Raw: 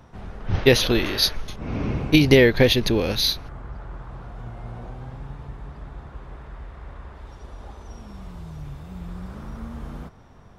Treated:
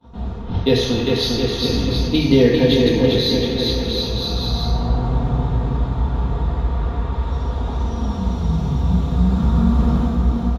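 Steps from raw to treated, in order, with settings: low shelf 100 Hz -9 dB; gate -52 dBFS, range -23 dB; comb 4.3 ms, depth 47%; bouncing-ball echo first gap 0.4 s, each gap 0.8×, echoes 5; reverb RT60 1.1 s, pre-delay 3 ms, DRR -2 dB; AGC gain up to 5.5 dB; low shelf 210 Hz +12 dB; gain -5 dB

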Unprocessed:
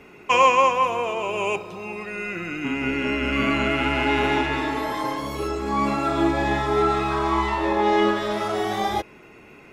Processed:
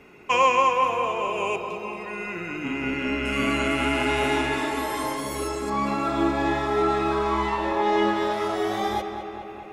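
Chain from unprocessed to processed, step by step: 3.25–5.7 bell 9500 Hz +15 dB 0.97 oct; darkening echo 0.212 s, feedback 70%, low-pass 3800 Hz, level -8.5 dB; gain -3 dB

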